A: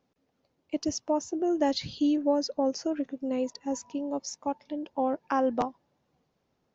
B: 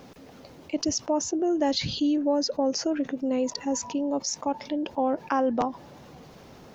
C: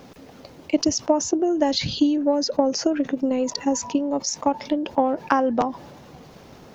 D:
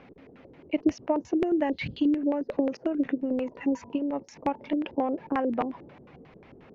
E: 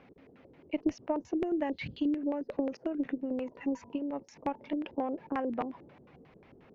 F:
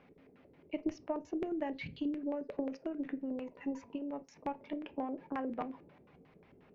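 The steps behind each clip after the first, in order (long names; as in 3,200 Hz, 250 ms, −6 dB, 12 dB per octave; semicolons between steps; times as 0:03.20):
envelope flattener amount 50%
transient designer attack +7 dB, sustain +3 dB; level +2 dB
auto-filter low-pass square 5.6 Hz 390–2,300 Hz; level −7.5 dB
harmonic generator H 2 −24 dB, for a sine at −12 dBFS; level −6 dB
convolution reverb RT60 0.30 s, pre-delay 5 ms, DRR 11 dB; level −5 dB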